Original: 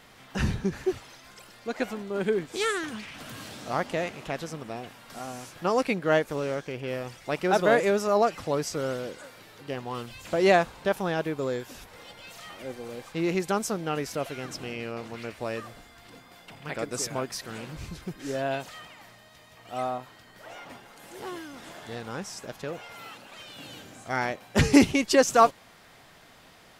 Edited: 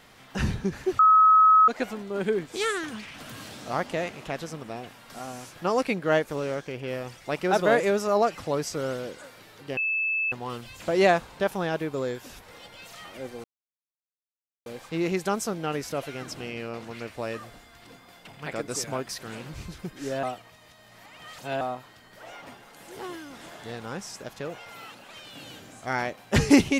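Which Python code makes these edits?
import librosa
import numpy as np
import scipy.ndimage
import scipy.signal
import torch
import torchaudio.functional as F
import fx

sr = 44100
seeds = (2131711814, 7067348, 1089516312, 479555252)

y = fx.edit(x, sr, fx.bleep(start_s=0.99, length_s=0.69, hz=1280.0, db=-13.0),
    fx.insert_tone(at_s=9.77, length_s=0.55, hz=2620.0, db=-23.5),
    fx.insert_silence(at_s=12.89, length_s=1.22),
    fx.reverse_span(start_s=18.46, length_s=1.38), tone=tone)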